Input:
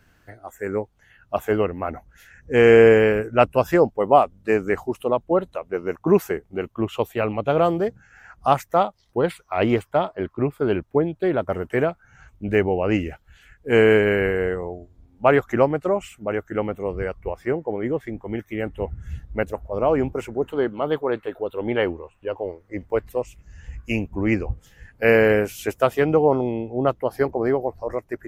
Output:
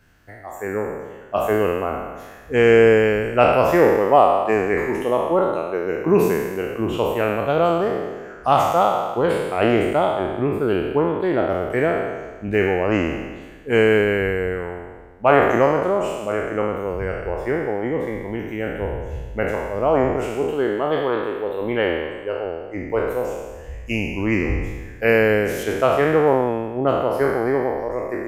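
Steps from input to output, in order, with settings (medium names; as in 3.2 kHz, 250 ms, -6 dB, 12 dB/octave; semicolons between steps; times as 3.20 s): spectral sustain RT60 1.38 s; 25.63–26.27 s: treble shelf 8.8 kHz -9 dB; trim -1 dB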